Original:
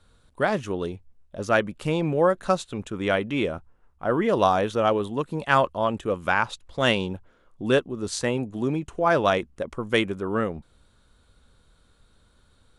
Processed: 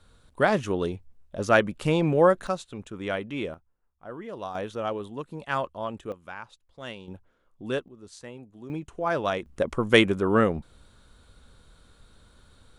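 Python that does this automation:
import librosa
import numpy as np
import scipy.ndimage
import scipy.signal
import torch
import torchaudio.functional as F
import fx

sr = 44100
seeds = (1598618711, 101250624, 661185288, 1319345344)

y = fx.gain(x, sr, db=fx.steps((0.0, 1.5), (2.47, -6.5), (3.54, -16.0), (4.55, -8.5), (6.12, -17.5), (7.08, -8.5), (7.88, -17.0), (8.7, -6.0), (9.46, 4.5)))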